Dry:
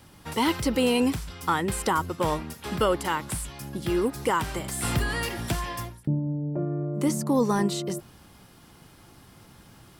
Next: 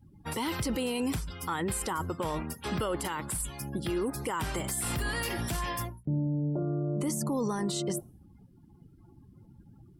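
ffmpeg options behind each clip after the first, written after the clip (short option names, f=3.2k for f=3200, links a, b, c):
-af "afftdn=nr=31:nf=-46,highshelf=f=7.9k:g=9,alimiter=limit=-23.5dB:level=0:latency=1:release=19"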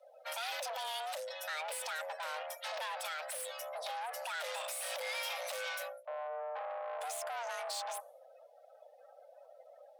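-af "asoftclip=type=tanh:threshold=-36dB,afreqshift=460,equalizer=f=3.4k:w=0.66:g=7,volume=-3.5dB"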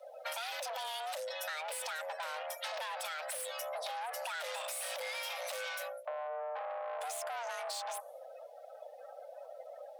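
-af "acompressor=threshold=-46dB:ratio=6,volume=8.5dB"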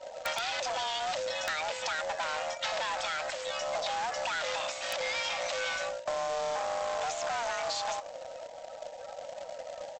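-af "aresample=16000,acrusher=bits=2:mode=log:mix=0:aa=0.000001,aresample=44100,aeval=exprs='val(0)+0.000631*sin(2*PI*940*n/s)':c=same,aeval=exprs='(mod(20*val(0)+1,2)-1)/20':c=same,volume=6.5dB"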